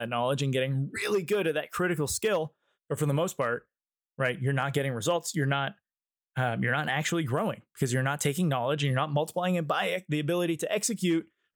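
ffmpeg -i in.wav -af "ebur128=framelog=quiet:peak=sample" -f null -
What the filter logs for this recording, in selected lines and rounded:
Integrated loudness:
  I:         -28.9 LUFS
  Threshold: -39.1 LUFS
Loudness range:
  LRA:         2.0 LU
  Threshold: -49.5 LUFS
  LRA low:   -30.4 LUFS
  LRA high:  -28.4 LUFS
Sample peak:
  Peak:      -12.3 dBFS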